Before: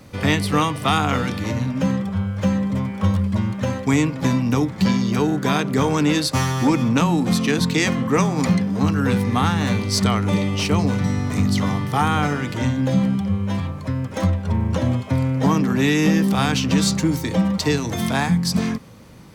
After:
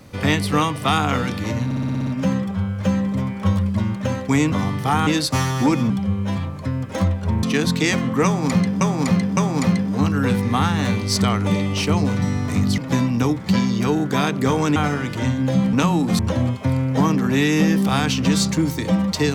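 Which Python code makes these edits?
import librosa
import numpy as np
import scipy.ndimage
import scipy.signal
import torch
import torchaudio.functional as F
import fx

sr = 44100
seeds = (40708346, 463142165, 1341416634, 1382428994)

y = fx.edit(x, sr, fx.stutter(start_s=1.65, slice_s=0.06, count=8),
    fx.swap(start_s=4.1, length_s=1.98, other_s=11.6, other_length_s=0.55),
    fx.swap(start_s=6.91, length_s=0.46, other_s=13.12, other_length_s=1.53),
    fx.repeat(start_s=8.19, length_s=0.56, count=3), tone=tone)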